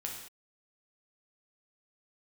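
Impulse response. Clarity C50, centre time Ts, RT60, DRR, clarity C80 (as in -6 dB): 3.5 dB, 39 ms, no single decay rate, -0.5 dB, 6.5 dB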